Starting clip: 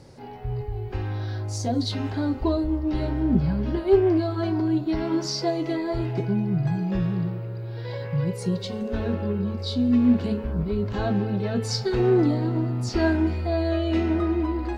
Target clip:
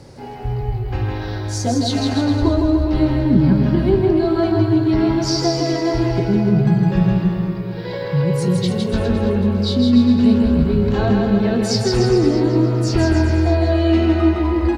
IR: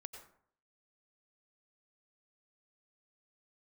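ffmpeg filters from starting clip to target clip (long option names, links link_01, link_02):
-filter_complex "[0:a]asplit=2[link_01][link_02];[link_02]aecho=0:1:626:0.126[link_03];[link_01][link_03]amix=inputs=2:normalize=0,acrossover=split=230[link_04][link_05];[link_05]acompressor=threshold=-24dB:ratio=6[link_06];[link_04][link_06]amix=inputs=2:normalize=0,asplit=2[link_07][link_08];[link_08]aecho=0:1:160|296|411.6|509.9|593.4:0.631|0.398|0.251|0.158|0.1[link_09];[link_07][link_09]amix=inputs=2:normalize=0,volume=7dB"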